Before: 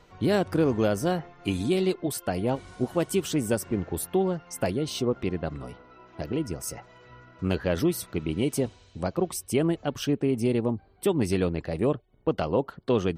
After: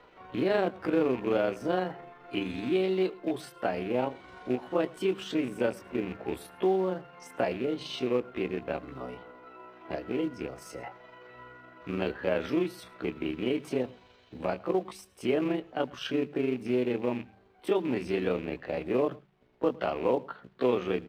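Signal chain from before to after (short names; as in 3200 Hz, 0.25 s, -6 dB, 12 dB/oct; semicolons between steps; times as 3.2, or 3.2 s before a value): rattling part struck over -28 dBFS, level -31 dBFS; notches 50/100/150/200 Hz; in parallel at +1 dB: compressor 6:1, threshold -32 dBFS, peak gain reduction 13 dB; on the sum: granular stretch 1.6×, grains 85 ms; companded quantiser 6-bit; three-band isolator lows -13 dB, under 240 Hz, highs -21 dB, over 3700 Hz; on a send: echo 0.108 s -23 dB; on the sum: gain -3 dB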